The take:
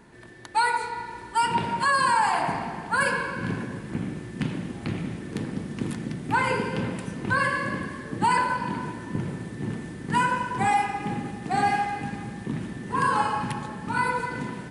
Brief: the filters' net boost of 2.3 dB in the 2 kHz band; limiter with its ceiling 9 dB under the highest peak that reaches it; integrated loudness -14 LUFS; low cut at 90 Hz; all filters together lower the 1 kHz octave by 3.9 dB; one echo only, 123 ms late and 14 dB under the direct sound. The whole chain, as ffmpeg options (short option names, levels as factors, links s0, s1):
-af "highpass=90,equalizer=f=1000:t=o:g=-5.5,equalizer=f=2000:t=o:g=5.5,alimiter=limit=0.106:level=0:latency=1,aecho=1:1:123:0.2,volume=6.31"